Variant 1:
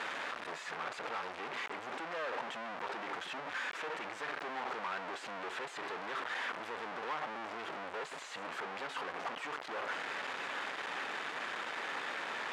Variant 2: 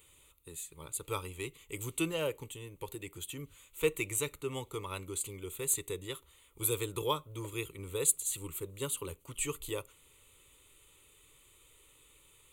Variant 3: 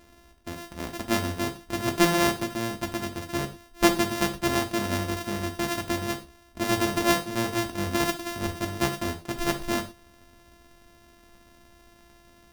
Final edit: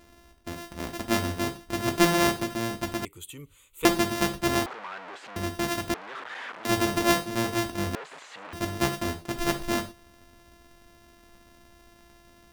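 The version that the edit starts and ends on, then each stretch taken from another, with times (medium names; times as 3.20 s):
3
3.05–3.85 s: from 2
4.66–5.36 s: from 1
5.94–6.65 s: from 1
7.95–8.53 s: from 1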